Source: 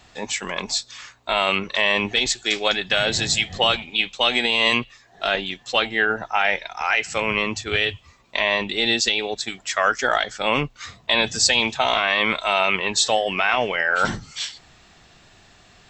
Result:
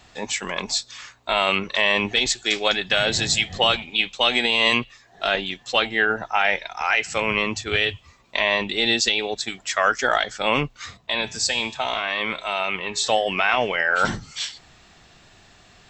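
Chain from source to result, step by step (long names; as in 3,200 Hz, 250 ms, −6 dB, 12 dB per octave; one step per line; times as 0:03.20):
0:10.97–0:13.04: tuned comb filter 59 Hz, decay 0.69 s, harmonics odd, mix 50%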